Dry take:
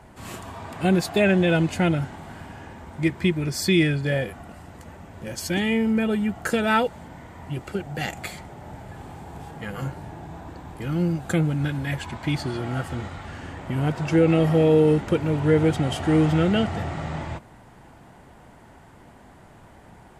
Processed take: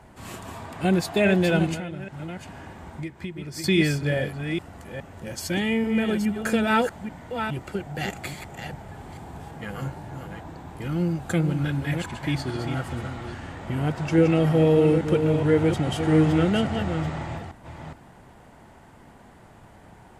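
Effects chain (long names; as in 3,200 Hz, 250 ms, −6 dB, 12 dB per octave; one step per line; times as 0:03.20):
delay that plays each chunk backwards 417 ms, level −7 dB
0:01.74–0:03.64: downward compressor 6 to 1, threshold −30 dBFS, peak gain reduction 13 dB
level −1.5 dB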